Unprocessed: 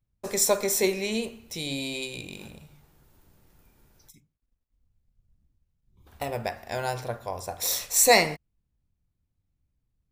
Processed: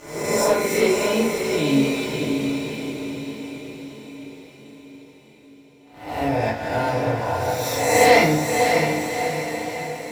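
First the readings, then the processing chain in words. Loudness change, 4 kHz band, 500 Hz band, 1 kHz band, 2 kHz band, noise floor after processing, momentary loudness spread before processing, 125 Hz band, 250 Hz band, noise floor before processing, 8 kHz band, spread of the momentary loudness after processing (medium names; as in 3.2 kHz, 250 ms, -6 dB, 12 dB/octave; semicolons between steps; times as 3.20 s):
+4.5 dB, +2.5 dB, +9.0 dB, +9.5 dB, +7.5 dB, -49 dBFS, 17 LU, +12.0 dB, +13.0 dB, -79 dBFS, -2.0 dB, 18 LU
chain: reverse spectral sustain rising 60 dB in 1.00 s; high-pass 62 Hz; tone controls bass +1 dB, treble -14 dB; waveshaping leveller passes 3; on a send: echo that smears into a reverb 604 ms, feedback 55%, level -4.5 dB; on the sum: FDN reverb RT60 0.47 s, low-frequency decay 1.55×, high-frequency decay 0.8×, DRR -5 dB; trim -11.5 dB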